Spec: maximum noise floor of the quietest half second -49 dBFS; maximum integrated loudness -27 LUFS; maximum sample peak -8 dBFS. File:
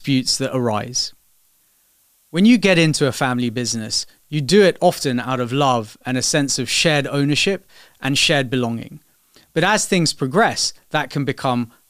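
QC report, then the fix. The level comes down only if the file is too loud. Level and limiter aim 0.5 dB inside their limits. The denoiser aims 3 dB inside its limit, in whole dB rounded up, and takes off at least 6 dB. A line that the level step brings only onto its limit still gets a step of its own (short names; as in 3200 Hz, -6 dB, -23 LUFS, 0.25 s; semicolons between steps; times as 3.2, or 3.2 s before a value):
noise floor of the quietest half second -59 dBFS: OK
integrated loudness -18.0 LUFS: fail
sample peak -3.5 dBFS: fail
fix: gain -9.5 dB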